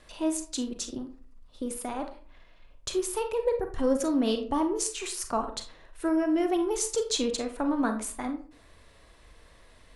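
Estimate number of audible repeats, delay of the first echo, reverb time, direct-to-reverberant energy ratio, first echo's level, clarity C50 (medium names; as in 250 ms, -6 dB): no echo, no echo, 0.40 s, 6.0 dB, no echo, 9.5 dB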